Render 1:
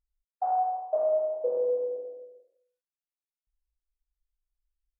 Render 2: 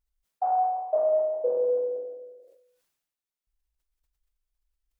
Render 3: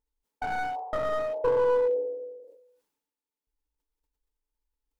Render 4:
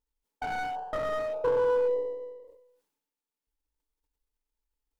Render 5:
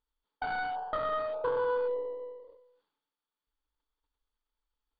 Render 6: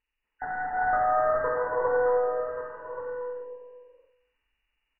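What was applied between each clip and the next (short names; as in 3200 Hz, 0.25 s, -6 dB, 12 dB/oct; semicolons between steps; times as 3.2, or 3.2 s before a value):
sustainer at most 55 dB/s; gain +2 dB
one-sided fold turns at -26.5 dBFS; small resonant body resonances 290/440/870 Hz, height 16 dB, ringing for 45 ms; gain -5.5 dB
half-wave gain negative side -3 dB
in parallel at +1 dB: compressor, threshold -35 dBFS, peak gain reduction 12 dB; on the sum: rippled Chebyshev low-pass 4700 Hz, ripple 9 dB
nonlinear frequency compression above 1500 Hz 4:1; echo 1.13 s -10.5 dB; non-linear reverb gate 0.45 s rising, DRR -5 dB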